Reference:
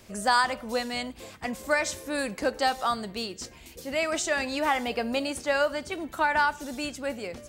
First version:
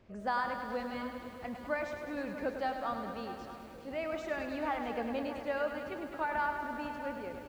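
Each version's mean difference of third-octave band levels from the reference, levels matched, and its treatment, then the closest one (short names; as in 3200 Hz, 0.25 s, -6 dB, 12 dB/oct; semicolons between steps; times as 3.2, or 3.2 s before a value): 7.0 dB: tape spacing loss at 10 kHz 34 dB; on a send: feedback echo 0.641 s, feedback 38%, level -14 dB; on the sum: lo-fi delay 0.103 s, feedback 80%, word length 9-bit, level -8 dB; gain -6.5 dB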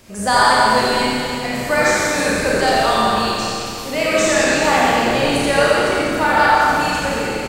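9.0 dB: doubler 35 ms -11 dB; frequency-shifting echo 82 ms, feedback 47%, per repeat -110 Hz, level -6 dB; Schroeder reverb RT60 2.8 s, combs from 28 ms, DRR -5.5 dB; gain +4.5 dB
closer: first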